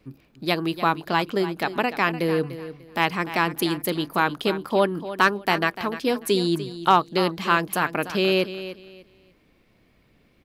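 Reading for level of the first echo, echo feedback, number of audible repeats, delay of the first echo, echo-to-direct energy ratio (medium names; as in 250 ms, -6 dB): -13.0 dB, 24%, 2, 296 ms, -12.5 dB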